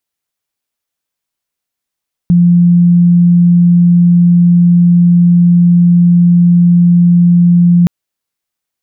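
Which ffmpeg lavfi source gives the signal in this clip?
-f lavfi -i "aevalsrc='0.668*sin(2*PI*174*t)':d=5.57:s=44100"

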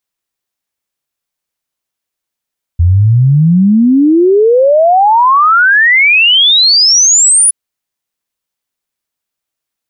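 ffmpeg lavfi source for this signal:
-f lavfi -i "aevalsrc='0.631*clip(min(t,4.72-t)/0.01,0,1)*sin(2*PI*82*4.72/log(10000/82)*(exp(log(10000/82)*t/4.72)-1))':d=4.72:s=44100"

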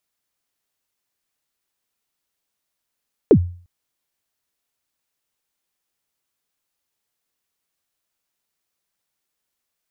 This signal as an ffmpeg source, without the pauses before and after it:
-f lavfi -i "aevalsrc='0.631*pow(10,-3*t/0.44)*sin(2*PI*(500*0.072/log(88/500)*(exp(log(88/500)*min(t,0.072)/0.072)-1)+88*max(t-0.072,0)))':d=0.35:s=44100"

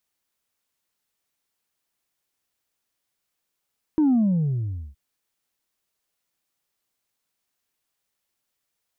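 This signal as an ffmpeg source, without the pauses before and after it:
-f lavfi -i "aevalsrc='0.158*clip((0.97-t)/0.83,0,1)*tanh(1.12*sin(2*PI*320*0.97/log(65/320)*(exp(log(65/320)*t/0.97)-1)))/tanh(1.12)':d=0.97:s=44100"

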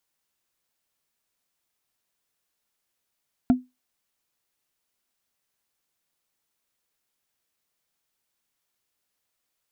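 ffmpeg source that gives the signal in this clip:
-f lavfi -i "aevalsrc='0.299*pow(10,-3*t/0.21)*sin(2*PI*252*t)+0.0891*pow(10,-3*t/0.062)*sin(2*PI*694.8*t)+0.0266*pow(10,-3*t/0.028)*sin(2*PI*1361.8*t)+0.00794*pow(10,-3*t/0.015)*sin(2*PI*2251.1*t)+0.00237*pow(10,-3*t/0.009)*sin(2*PI*3361.7*t)':d=0.45:s=44100"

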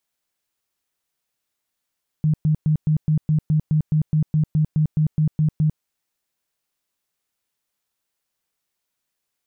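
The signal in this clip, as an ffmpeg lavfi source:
-f lavfi -i "aevalsrc='0.188*sin(2*PI*154*mod(t,0.21))*lt(mod(t,0.21),15/154)':d=3.57:s=44100"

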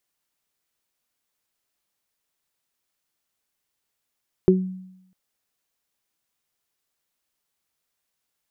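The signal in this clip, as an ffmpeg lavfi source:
-f lavfi -i "aevalsrc='0.2*pow(10,-3*t/0.84)*sin(2*PI*186*t)+0.398*pow(10,-3*t/0.21)*sin(2*PI*372*t)':d=0.65:s=44100"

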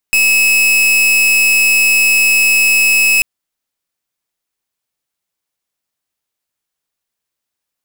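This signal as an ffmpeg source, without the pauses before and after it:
-f lavfi -i "aevalsrc='0.299*(2*lt(mod(2580*t,1),0.42)-1)':d=3.09:s=44100"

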